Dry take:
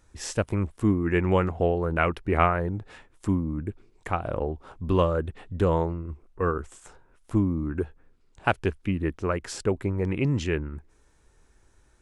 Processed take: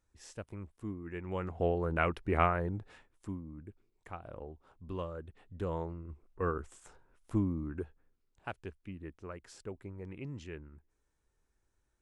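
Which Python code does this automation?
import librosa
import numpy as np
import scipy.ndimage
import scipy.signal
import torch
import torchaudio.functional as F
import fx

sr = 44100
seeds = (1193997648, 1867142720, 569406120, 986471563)

y = fx.gain(x, sr, db=fx.line((1.24, -18.0), (1.67, -6.5), (2.76, -6.5), (3.4, -17.0), (5.22, -17.0), (6.44, -7.5), (7.48, -7.5), (8.52, -18.0)))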